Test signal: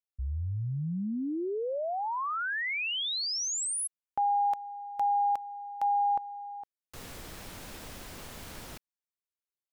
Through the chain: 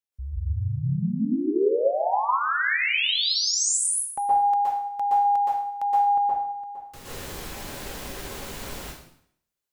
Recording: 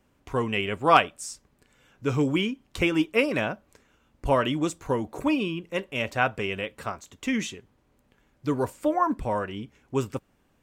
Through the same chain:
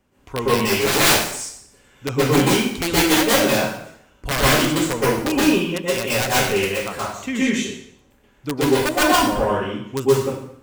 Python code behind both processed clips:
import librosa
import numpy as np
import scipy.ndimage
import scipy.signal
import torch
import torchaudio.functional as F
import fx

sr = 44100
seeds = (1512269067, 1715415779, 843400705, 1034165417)

y = (np.mod(10.0 ** (16.0 / 20.0) * x + 1.0, 2.0) - 1.0) / 10.0 ** (16.0 / 20.0)
y = fx.rev_plate(y, sr, seeds[0], rt60_s=0.66, hf_ratio=0.95, predelay_ms=110, drr_db=-8.0)